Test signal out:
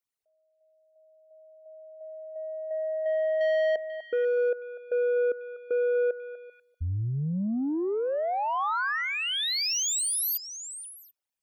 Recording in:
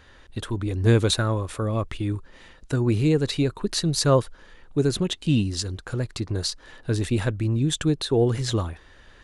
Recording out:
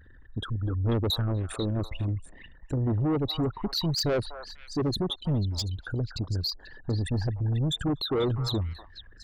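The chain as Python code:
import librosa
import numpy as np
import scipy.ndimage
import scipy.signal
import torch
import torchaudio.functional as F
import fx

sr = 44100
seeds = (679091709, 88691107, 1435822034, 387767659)

p1 = fx.envelope_sharpen(x, sr, power=3.0)
p2 = fx.dynamic_eq(p1, sr, hz=2200.0, q=1.4, threshold_db=-42.0, ratio=4.0, max_db=-4)
p3 = 10.0 ** (-22.5 / 20.0) * np.tanh(p2 / 10.0 ** (-22.5 / 20.0))
y = p3 + fx.echo_stepped(p3, sr, ms=245, hz=1000.0, octaves=1.4, feedback_pct=70, wet_db=-5.0, dry=0)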